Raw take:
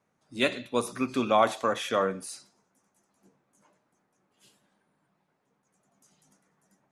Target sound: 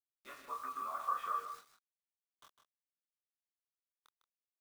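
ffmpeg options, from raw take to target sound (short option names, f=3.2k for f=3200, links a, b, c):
-filter_complex "[0:a]afftfilt=real='re':imag='-im':win_size=2048:overlap=0.75,dynaudnorm=f=450:g=3:m=12dB,alimiter=limit=-13.5dB:level=0:latency=1:release=35,acompressor=threshold=-30dB:ratio=16,bandpass=f=1.2k:t=q:w=15:csg=0,atempo=1.5,acrusher=bits=10:mix=0:aa=0.000001,asplit=2[a][b];[b]adelay=26,volume=-4.5dB[c];[a][c]amix=inputs=2:normalize=0,aecho=1:1:154:0.335,volume=8dB"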